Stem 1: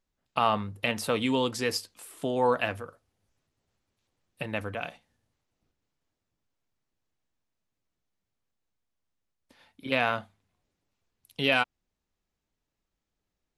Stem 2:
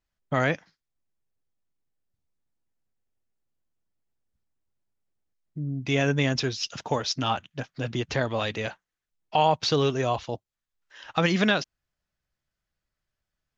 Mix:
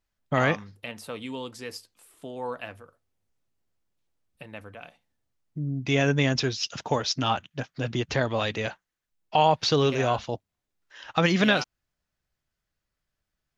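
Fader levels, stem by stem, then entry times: -9.0 dB, +1.0 dB; 0.00 s, 0.00 s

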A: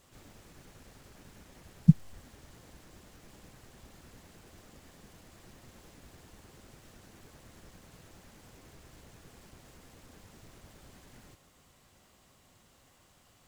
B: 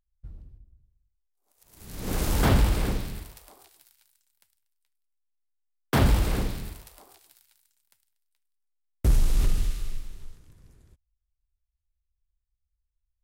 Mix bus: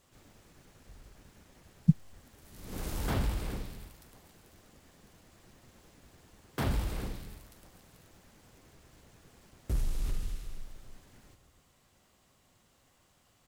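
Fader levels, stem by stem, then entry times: -4.0 dB, -10.5 dB; 0.00 s, 0.65 s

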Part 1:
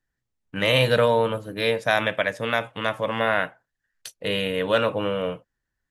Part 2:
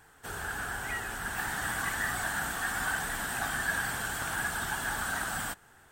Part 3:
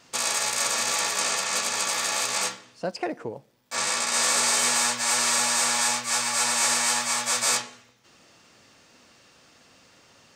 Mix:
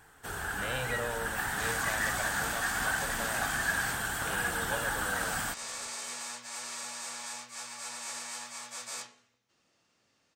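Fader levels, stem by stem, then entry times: -18.0 dB, +0.5 dB, -17.0 dB; 0.00 s, 0.00 s, 1.45 s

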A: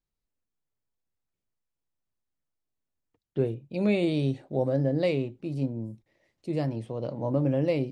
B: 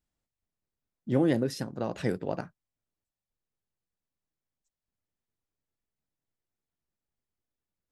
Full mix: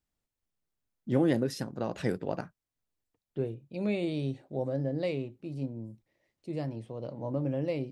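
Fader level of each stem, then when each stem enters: -6.0 dB, -1.0 dB; 0.00 s, 0.00 s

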